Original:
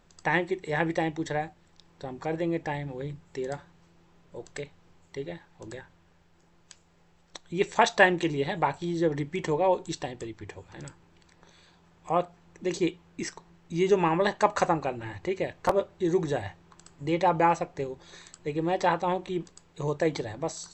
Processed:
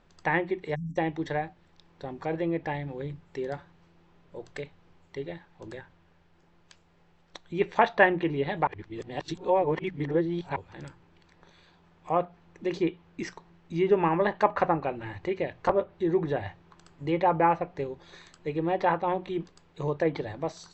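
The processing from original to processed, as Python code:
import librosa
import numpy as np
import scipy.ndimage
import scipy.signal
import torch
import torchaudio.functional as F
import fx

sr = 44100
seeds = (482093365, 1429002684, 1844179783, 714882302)

y = fx.spec_erase(x, sr, start_s=0.75, length_s=0.22, low_hz=280.0, high_hz=5500.0)
y = fx.edit(y, sr, fx.reverse_span(start_s=8.67, length_s=1.89), tone=tone)
y = fx.hum_notches(y, sr, base_hz=60, count=3)
y = fx.env_lowpass_down(y, sr, base_hz=2400.0, full_db=-22.0)
y = scipy.signal.sosfilt(scipy.signal.butter(2, 4300.0, 'lowpass', fs=sr, output='sos'), y)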